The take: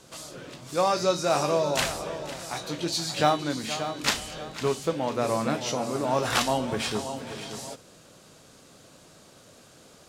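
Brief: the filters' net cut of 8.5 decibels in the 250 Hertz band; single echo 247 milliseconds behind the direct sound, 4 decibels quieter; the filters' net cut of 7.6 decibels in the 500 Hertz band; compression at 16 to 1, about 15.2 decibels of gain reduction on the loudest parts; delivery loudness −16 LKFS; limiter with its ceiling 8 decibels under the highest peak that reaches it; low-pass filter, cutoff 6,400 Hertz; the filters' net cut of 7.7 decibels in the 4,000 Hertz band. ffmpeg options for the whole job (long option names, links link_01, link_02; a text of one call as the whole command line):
ffmpeg -i in.wav -af "lowpass=6400,equalizer=frequency=250:width_type=o:gain=-9,equalizer=frequency=500:width_type=o:gain=-7.5,equalizer=frequency=4000:width_type=o:gain=-9,acompressor=threshold=-36dB:ratio=16,alimiter=level_in=7.5dB:limit=-24dB:level=0:latency=1,volume=-7.5dB,aecho=1:1:247:0.631,volume=25dB" out.wav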